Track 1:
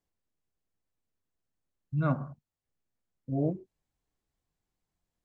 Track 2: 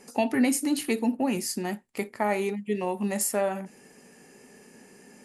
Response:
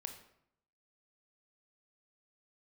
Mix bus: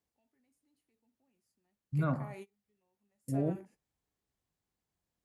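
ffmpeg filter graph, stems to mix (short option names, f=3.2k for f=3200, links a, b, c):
-filter_complex "[0:a]volume=-1.5dB,asplit=2[a][b];[1:a]alimiter=limit=-20dB:level=0:latency=1:release=21,volume=-18dB[c];[b]apad=whole_len=231513[d];[c][d]sidechaingate=range=-33dB:threshold=-57dB:ratio=16:detection=peak[e];[a][e]amix=inputs=2:normalize=0,highpass=51,alimiter=limit=-22.5dB:level=0:latency=1:release=15"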